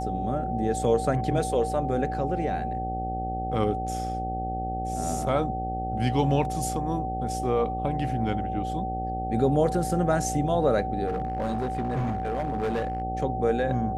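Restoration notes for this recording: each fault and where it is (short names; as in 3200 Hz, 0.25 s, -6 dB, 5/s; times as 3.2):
buzz 60 Hz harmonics 14 -33 dBFS
tone 760 Hz -30 dBFS
11.06–13.02 clipped -23.5 dBFS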